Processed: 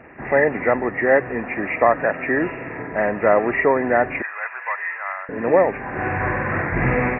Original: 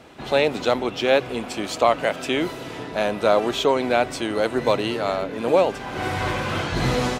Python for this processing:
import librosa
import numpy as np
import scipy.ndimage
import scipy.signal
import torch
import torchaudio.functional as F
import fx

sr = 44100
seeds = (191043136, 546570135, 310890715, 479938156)

y = fx.freq_compress(x, sr, knee_hz=1600.0, ratio=4.0)
y = fx.highpass(y, sr, hz=1000.0, slope=24, at=(4.22, 5.29))
y = F.gain(torch.from_numpy(y), 2.0).numpy()